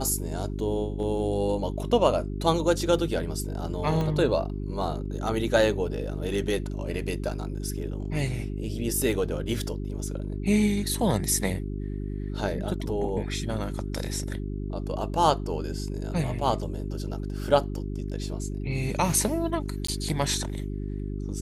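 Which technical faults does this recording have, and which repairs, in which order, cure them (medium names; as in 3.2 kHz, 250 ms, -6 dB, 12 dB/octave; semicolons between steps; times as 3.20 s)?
hum 50 Hz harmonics 8 -32 dBFS
4.01 s: pop -18 dBFS
19.87–19.88 s: dropout 14 ms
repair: de-click; de-hum 50 Hz, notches 8; interpolate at 19.87 s, 14 ms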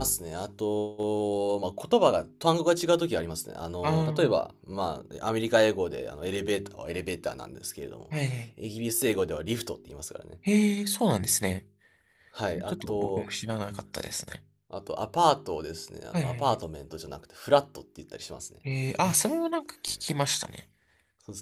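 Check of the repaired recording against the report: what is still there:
4.01 s: pop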